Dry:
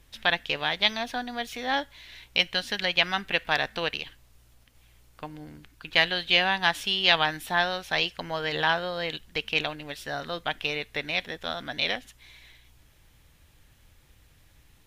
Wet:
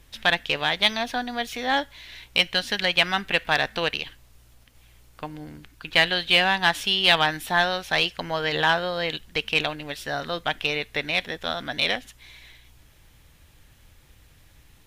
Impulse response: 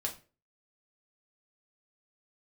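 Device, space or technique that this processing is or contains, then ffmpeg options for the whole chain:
parallel distortion: -filter_complex "[0:a]asplit=2[a][b];[b]asoftclip=type=hard:threshold=-18.5dB,volume=-4.5dB[c];[a][c]amix=inputs=2:normalize=0"

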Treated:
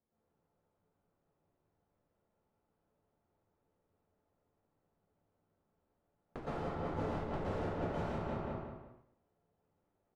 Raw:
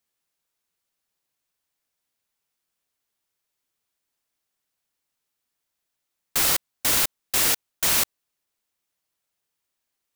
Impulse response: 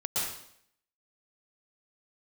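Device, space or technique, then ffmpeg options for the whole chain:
television next door: -filter_complex "[0:a]asplit=3[a][b][c];[a]afade=t=out:st=6.39:d=0.02[d];[b]agate=range=-33dB:threshold=-15dB:ratio=3:detection=peak,afade=t=in:st=6.39:d=0.02,afade=t=out:st=6.98:d=0.02[e];[c]afade=t=in:st=6.98:d=0.02[f];[d][e][f]amix=inputs=3:normalize=0,asplit=2[g][h];[h]adelay=182,lowpass=f=3.2k:p=1,volume=-5dB,asplit=2[i][j];[j]adelay=182,lowpass=f=3.2k:p=1,volume=0.34,asplit=2[k][l];[l]adelay=182,lowpass=f=3.2k:p=1,volume=0.34,asplit=2[m][n];[n]adelay=182,lowpass=f=3.2k:p=1,volume=0.34[o];[g][i][k][m][o]amix=inputs=5:normalize=0,acompressor=threshold=-37dB:ratio=4,lowpass=600[p];[1:a]atrim=start_sample=2205[q];[p][q]afir=irnorm=-1:irlink=0,volume=7dB"

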